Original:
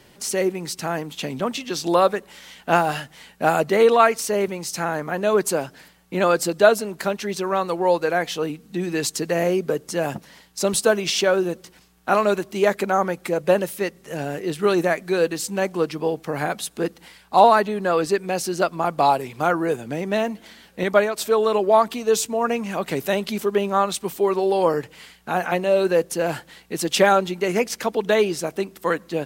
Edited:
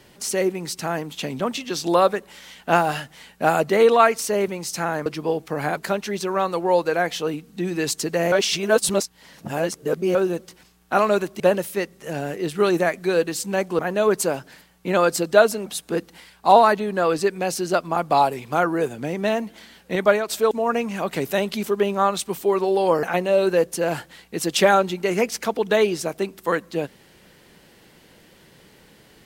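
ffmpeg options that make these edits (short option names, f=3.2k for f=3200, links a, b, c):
-filter_complex "[0:a]asplit=10[a][b][c][d][e][f][g][h][i][j];[a]atrim=end=5.062[k];[b]atrim=start=15.828:end=16.542[l];[c]atrim=start=6.928:end=9.482[m];[d]atrim=start=9.478:end=11.312,asetpts=PTS-STARTPTS,areverse[n];[e]atrim=start=11.308:end=12.562[o];[f]atrim=start=13.438:end=15.832[p];[g]atrim=start=5.058:end=6.932[q];[h]atrim=start=16.538:end=21.392[r];[i]atrim=start=22.258:end=24.782[s];[j]atrim=start=25.408[t];[k][l]acrossfade=d=0.004:c1=hsin:c2=hsin[u];[u][m]acrossfade=d=0.004:c1=hsin:c2=hsin[v];[v][n]acrossfade=d=0.004:c1=hsin:c2=hsin[w];[w][o]acrossfade=d=0.004:c1=hsin:c2=hsin[x];[x][p]acrossfade=d=0.004:c1=hsin:c2=hsin[y];[y][q]acrossfade=d=0.004:c1=hsin:c2=hsin[z];[z][r]acrossfade=d=0.004:c1=hsin:c2=hsin[aa];[aa][s]acrossfade=d=0.004:c1=hsin:c2=hsin[ab];[ab][t]acrossfade=d=0.004:c1=hsin:c2=hsin"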